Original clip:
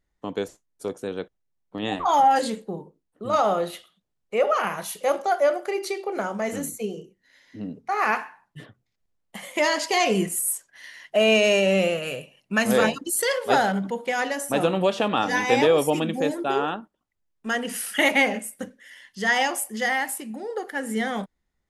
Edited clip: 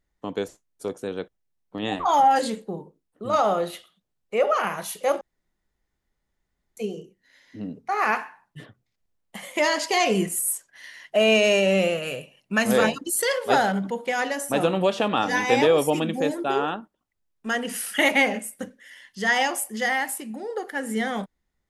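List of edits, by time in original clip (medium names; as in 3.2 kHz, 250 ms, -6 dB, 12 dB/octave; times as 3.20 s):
5.21–6.77 s: room tone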